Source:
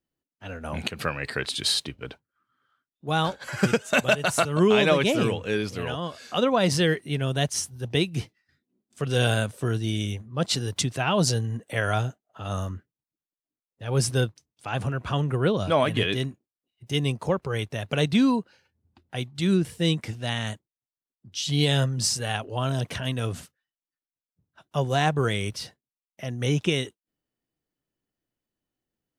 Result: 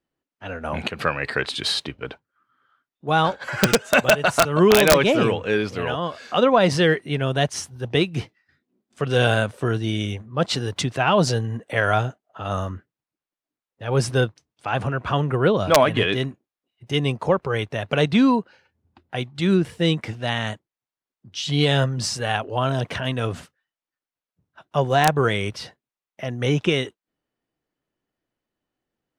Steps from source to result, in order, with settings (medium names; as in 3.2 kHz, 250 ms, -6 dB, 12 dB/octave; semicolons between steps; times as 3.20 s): overdrive pedal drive 6 dB, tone 1.5 kHz, clips at -8 dBFS; integer overflow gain 11.5 dB; trim +7 dB